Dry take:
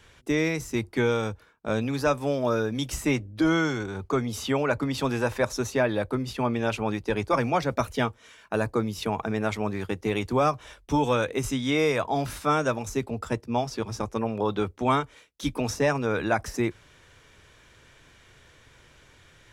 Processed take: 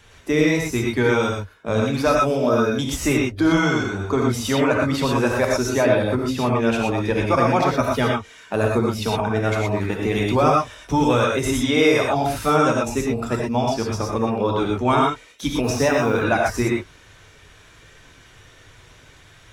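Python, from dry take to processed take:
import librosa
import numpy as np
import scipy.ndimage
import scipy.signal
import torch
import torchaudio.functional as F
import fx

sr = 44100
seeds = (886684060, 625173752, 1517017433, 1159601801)

y = fx.spec_quant(x, sr, step_db=15)
y = fx.quant_dither(y, sr, seeds[0], bits=10, dither='triangular', at=(15.64, 16.12))
y = fx.rev_gated(y, sr, seeds[1], gate_ms=140, shape='rising', drr_db=-1.0)
y = F.gain(torch.from_numpy(y), 4.0).numpy()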